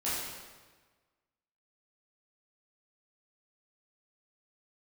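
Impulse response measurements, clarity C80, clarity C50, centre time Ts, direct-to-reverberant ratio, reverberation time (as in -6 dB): 1.5 dB, -1.0 dB, 95 ms, -10.5 dB, 1.4 s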